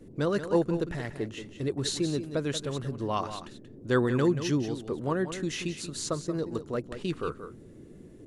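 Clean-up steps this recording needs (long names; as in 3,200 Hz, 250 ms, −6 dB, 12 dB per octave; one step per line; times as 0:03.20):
noise reduction from a noise print 27 dB
echo removal 182 ms −10.5 dB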